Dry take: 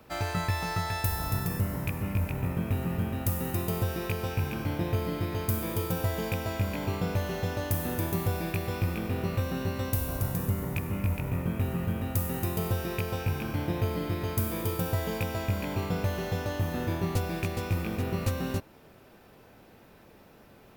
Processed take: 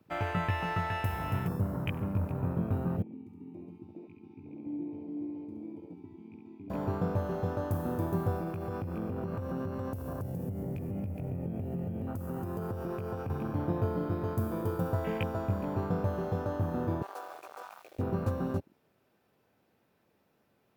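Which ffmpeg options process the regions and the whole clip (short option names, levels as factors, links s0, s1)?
-filter_complex "[0:a]asettb=1/sr,asplit=3[s0][s1][s2];[s0]atrim=end=3.024[s3];[s1]atrim=start=3.02:end=6.7,asetpts=PTS-STARTPTS,afade=t=in:d=0.004:c=qsin,afade=t=out:st=3.676:d=0.004:c=qsin,asplit=3[s4][s5][s6];[s4]bandpass=f=300:t=q:w=8,volume=1[s7];[s5]bandpass=f=870:t=q:w=8,volume=0.501[s8];[s6]bandpass=f=2240:t=q:w=8,volume=0.355[s9];[s7][s8][s9]amix=inputs=3:normalize=0,aecho=1:1:68|136|204:0.562|0.101|0.0182,atrim=end_sample=162288[s10];[s2]atrim=start=6.696[s11];[s3][s10]acrossfade=d=0.004:c1=hsin:c2=qsin[s12];[s12][s11]acrossfade=d=0.004:c1=qsin:c2=hsin,asettb=1/sr,asplit=3[s13][s14][s15];[s13]atrim=end=8.384[s16];[s14]atrim=start=8.38:end=13.3,asetpts=PTS-STARTPTS,afade=t=in:d=0.004:c=qsin,afade=t=out:st=4.916:d=0.004:c=qsin,highpass=48,acompressor=threshold=0.0355:ratio=20:attack=3.2:release=140:knee=1:detection=peak,bandreject=f=3800:w=9[s17];[s15]atrim=start=13.296[s18];[s16][s17]acrossfade=d=0.004:c1=hsin:c2=qsin[s19];[s19][s18]acrossfade=d=0.004:c1=qsin:c2=hsin,asettb=1/sr,asplit=3[s20][s21][s22];[s20]atrim=end=17.024[s23];[s21]atrim=start=17.02:end=17.99,asetpts=PTS-STARTPTS,afade=t=in:d=0.004:c=qsin,afade=t=out:st=0.966:d=0.004:c=qsin,highpass=f=630:w=0.5412,highpass=f=630:w=1.3066,acrusher=bits=5:mix=0:aa=0.5,asoftclip=type=hard:threshold=0.0299[s24];[s22]atrim=start=17.986[s25];[s23][s24]acrossfade=d=0.004:c1=hsin:c2=qsin[s26];[s26][s25]acrossfade=d=0.004:c1=qsin:c2=hsin,afwtdn=0.0126,highpass=90"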